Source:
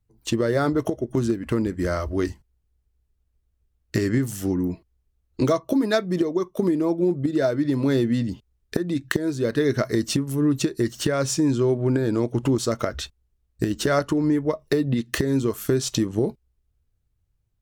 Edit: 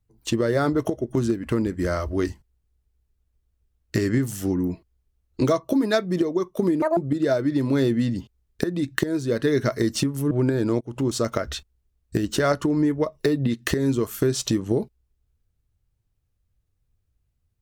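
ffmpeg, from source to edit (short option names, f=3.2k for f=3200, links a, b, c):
-filter_complex "[0:a]asplit=5[a][b][c][d][e];[a]atrim=end=6.824[f];[b]atrim=start=6.82:end=7.1,asetpts=PTS-STARTPTS,asetrate=82467,aresample=44100,atrim=end_sample=6603,asetpts=PTS-STARTPTS[g];[c]atrim=start=7.096:end=10.442[h];[d]atrim=start=11.778:end=12.28,asetpts=PTS-STARTPTS,afade=t=out:st=0.498:d=0.004:c=hsin:silence=0.0749894[i];[e]atrim=start=12.28,asetpts=PTS-STARTPTS,afade=t=in:d=0.34:silence=0.0749894[j];[f][g]acrossfade=d=0.004:c1=hsin:c2=hsin[k];[k][h]acrossfade=d=0.004:c1=hsin:c2=hsin[l];[i][j]concat=n=2:v=0:a=1[m];[l][m]acrossfade=d=0.004:c1=hsin:c2=hsin"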